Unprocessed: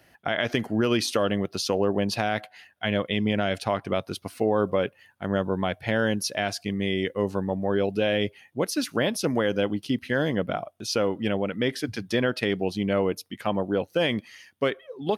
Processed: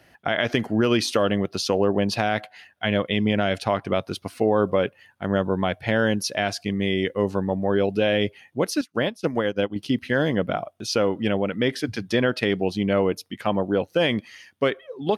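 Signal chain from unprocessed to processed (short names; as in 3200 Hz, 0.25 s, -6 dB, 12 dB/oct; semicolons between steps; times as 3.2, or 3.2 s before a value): high shelf 10000 Hz -7.5 dB; 8.81–9.76 upward expander 2.5:1, over -43 dBFS; gain +3 dB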